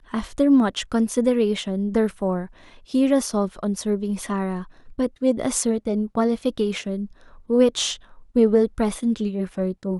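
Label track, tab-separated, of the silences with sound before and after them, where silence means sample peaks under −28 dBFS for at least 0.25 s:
2.460000	2.940000	silence
4.620000	4.990000	silence
7.050000	7.500000	silence
7.940000	8.360000	silence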